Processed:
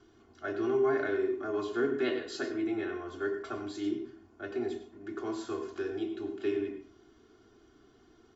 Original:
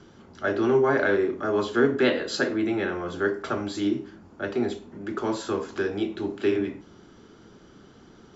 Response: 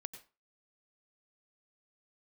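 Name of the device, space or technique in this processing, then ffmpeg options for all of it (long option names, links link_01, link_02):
microphone above a desk: -filter_complex "[0:a]aecho=1:1:2.8:0.82[link_01];[1:a]atrim=start_sample=2205[link_02];[link_01][link_02]afir=irnorm=-1:irlink=0,volume=-8.5dB"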